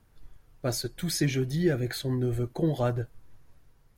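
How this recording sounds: noise floor -62 dBFS; spectral tilt -5.5 dB/oct

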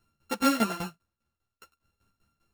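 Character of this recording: a buzz of ramps at a fixed pitch in blocks of 32 samples; tremolo saw down 5 Hz, depth 85%; a shimmering, thickened sound

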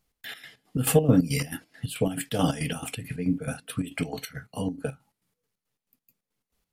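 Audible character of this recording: chopped level 4.6 Hz, depth 65%, duty 55%

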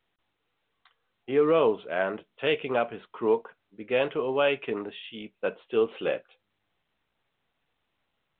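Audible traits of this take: µ-law

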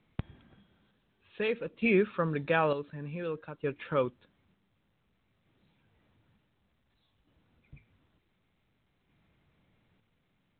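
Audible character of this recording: chopped level 0.55 Hz, depth 60%, duty 50%; µ-law

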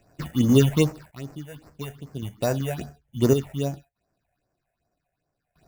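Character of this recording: aliases and images of a low sample rate 3200 Hz, jitter 0%; phasing stages 6, 2.5 Hz, lowest notch 290–3600 Hz; random-step tremolo 1.8 Hz, depth 90%

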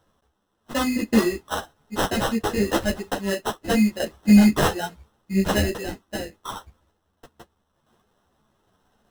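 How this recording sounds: random-step tremolo 1.5 Hz; aliases and images of a low sample rate 2300 Hz, jitter 0%; a shimmering, thickened sound

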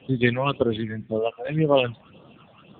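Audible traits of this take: phasing stages 8, 1.9 Hz, lowest notch 360–2400 Hz; a quantiser's noise floor 10-bit, dither none; AMR-NB

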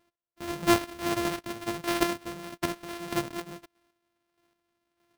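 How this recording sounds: a buzz of ramps at a fixed pitch in blocks of 128 samples; chopped level 1.6 Hz, depth 60%, duty 25%; aliases and images of a low sample rate 7200 Hz, jitter 20%

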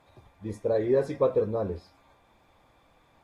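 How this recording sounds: Vorbis

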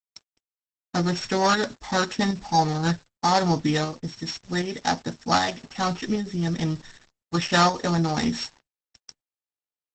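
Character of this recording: a buzz of ramps at a fixed pitch in blocks of 8 samples; tremolo saw up 1.3 Hz, depth 45%; a quantiser's noise floor 8-bit, dither none; Opus

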